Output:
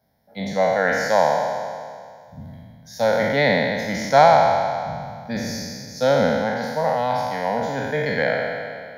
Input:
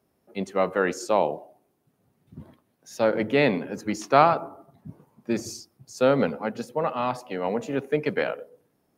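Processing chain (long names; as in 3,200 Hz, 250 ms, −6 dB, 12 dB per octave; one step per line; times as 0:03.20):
peak hold with a decay on every bin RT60 2.07 s
phaser with its sweep stopped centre 1,800 Hz, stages 8
level +4.5 dB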